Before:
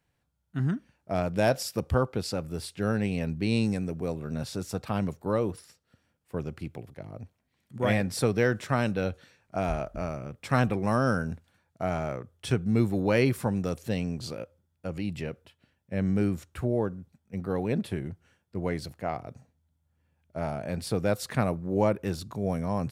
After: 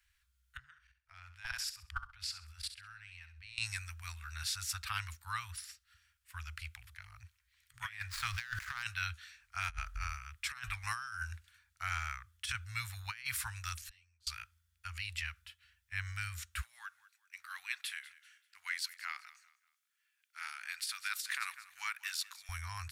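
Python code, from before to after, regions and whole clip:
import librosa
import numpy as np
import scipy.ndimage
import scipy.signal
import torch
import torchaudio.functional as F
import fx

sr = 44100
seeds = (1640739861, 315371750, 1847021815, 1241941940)

y = fx.chain(x, sr, fx.high_shelf(hz=6700.0, db=-11.5),
    fx.level_steps(step_db=22),
    fx.room_flutter(wall_m=11.3, rt60_s=0.36), at=(0.57, 3.58))
y = fx.chain(y, sr, fx.median_filter(points=15),
    fx.peak_eq(hz=470.0, db=4.0, octaves=1.3),
    fx.sustainer(db_per_s=52.0), at=(8.1, 8.83))
y = fx.chain(y, sr, fx.gate_flip(shuts_db=-31.0, range_db=-27),
    fx.ensemble(), at=(13.81, 14.27))
y = fx.chain(y, sr, fx.highpass(hz=1300.0, slope=12),
    fx.echo_feedback(ms=194, feedback_pct=34, wet_db=-18.5), at=(16.62, 22.49))
y = scipy.signal.sosfilt(scipy.signal.cheby2(4, 60, [170.0, 560.0], 'bandstop', fs=sr, output='sos'), y)
y = fx.over_compress(y, sr, threshold_db=-40.0, ratio=-0.5)
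y = y * librosa.db_to_amplitude(3.0)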